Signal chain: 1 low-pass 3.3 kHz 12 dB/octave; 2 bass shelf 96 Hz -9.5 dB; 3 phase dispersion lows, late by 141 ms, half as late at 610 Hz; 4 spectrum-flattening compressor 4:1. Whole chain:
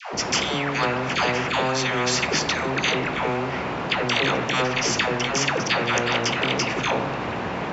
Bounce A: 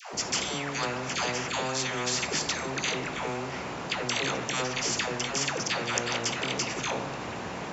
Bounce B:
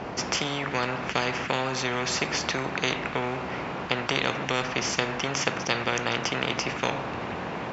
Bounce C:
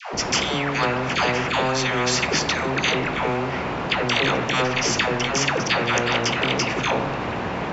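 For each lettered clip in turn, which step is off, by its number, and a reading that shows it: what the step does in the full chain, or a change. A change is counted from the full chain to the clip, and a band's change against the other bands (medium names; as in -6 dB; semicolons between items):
1, 4 kHz band +2.5 dB; 3, crest factor change +7.5 dB; 2, loudness change +1.0 LU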